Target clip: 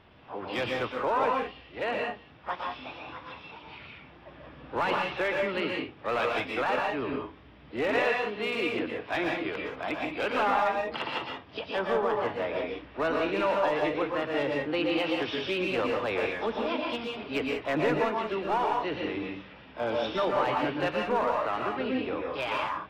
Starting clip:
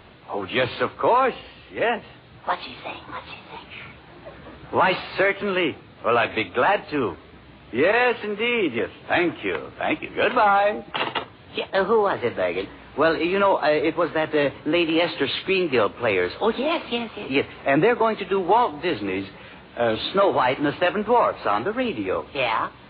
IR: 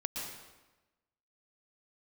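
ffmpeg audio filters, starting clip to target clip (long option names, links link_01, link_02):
-filter_complex "[0:a]aresample=8000,aresample=44100,aeval=exprs='clip(val(0),-1,0.2)':channel_layout=same,asplit=2[link_01][link_02];[link_02]asetrate=66075,aresample=44100,atempo=0.66742,volume=-13dB[link_03];[link_01][link_03]amix=inputs=2:normalize=0[link_04];[1:a]atrim=start_sample=2205,afade=type=out:start_time=0.25:duration=0.01,atrim=end_sample=11466[link_05];[link_04][link_05]afir=irnorm=-1:irlink=0,volume=-8.5dB"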